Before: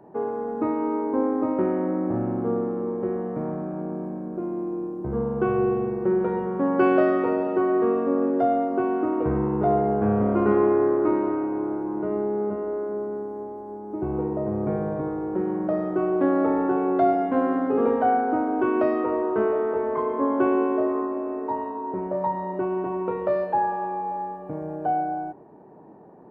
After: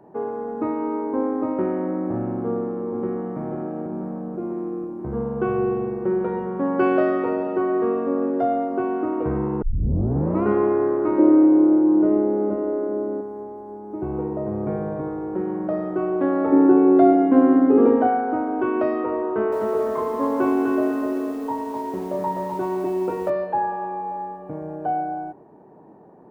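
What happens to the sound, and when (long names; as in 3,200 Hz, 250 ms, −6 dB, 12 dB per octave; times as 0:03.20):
0:02.43–0:03.37: delay throw 490 ms, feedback 70%, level −7 dB
0:09.62: tape start 0.82 s
0:11.18–0:13.21: hollow resonant body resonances 310/540 Hz, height 14 dB, ringing for 50 ms
0:16.52–0:18.07: parametric band 310 Hz +13 dB 0.79 octaves
0:19.27–0:23.30: feedback echo at a low word length 253 ms, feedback 35%, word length 8 bits, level −3 dB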